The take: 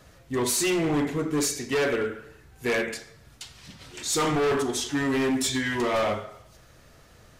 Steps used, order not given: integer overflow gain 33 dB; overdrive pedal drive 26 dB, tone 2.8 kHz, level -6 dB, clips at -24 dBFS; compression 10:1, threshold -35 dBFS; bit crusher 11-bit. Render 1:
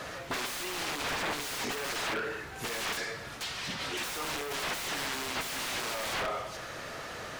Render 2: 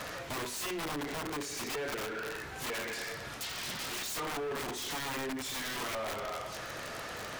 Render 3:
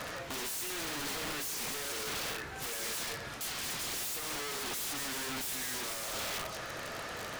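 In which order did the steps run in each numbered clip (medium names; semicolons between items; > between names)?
integer overflow > compression > overdrive pedal > bit crusher; overdrive pedal > compression > bit crusher > integer overflow; compression > overdrive pedal > integer overflow > bit crusher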